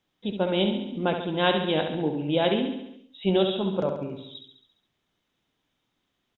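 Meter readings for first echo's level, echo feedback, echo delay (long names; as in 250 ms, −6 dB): −7.0 dB, 58%, 69 ms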